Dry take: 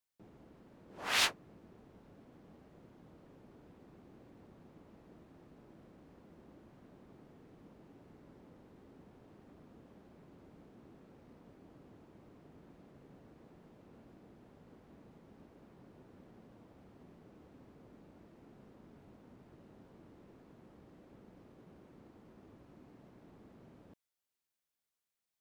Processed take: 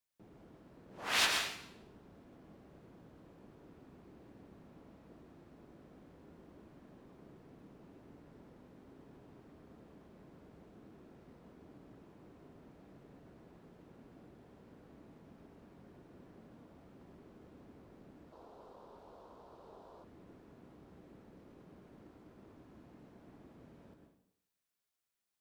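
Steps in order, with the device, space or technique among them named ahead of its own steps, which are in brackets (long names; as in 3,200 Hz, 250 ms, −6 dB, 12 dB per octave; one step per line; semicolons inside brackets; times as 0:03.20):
bathroom (convolution reverb RT60 0.75 s, pre-delay 98 ms, DRR 2.5 dB)
0:18.32–0:20.04: octave-band graphic EQ 125/250/500/1,000/2,000/4,000 Hz −8/−7/+7/+12/−9/+7 dB
level −1 dB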